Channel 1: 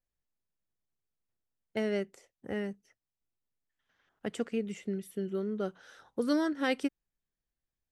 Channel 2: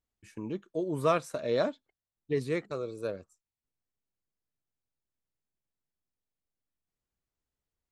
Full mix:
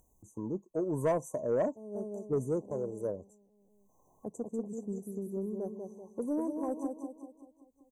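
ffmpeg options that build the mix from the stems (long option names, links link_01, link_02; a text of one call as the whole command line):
ffmpeg -i stem1.wav -i stem2.wav -filter_complex "[0:a]volume=-4dB,asplit=2[link_01][link_02];[link_02]volume=-5.5dB[link_03];[1:a]volume=0.5dB,asplit=2[link_04][link_05];[link_05]apad=whole_len=349193[link_06];[link_01][link_06]sidechaincompress=threshold=-47dB:ratio=10:attack=50:release=263[link_07];[link_03]aecho=0:1:193|386|579|772|965|1158:1|0.45|0.202|0.0911|0.041|0.0185[link_08];[link_07][link_04][link_08]amix=inputs=3:normalize=0,afftfilt=real='re*(1-between(b*sr/4096,1100,5900))':imag='im*(1-between(b*sr/4096,1100,5900))':win_size=4096:overlap=0.75,acompressor=mode=upward:threshold=-53dB:ratio=2.5,asoftclip=type=tanh:threshold=-21.5dB" out.wav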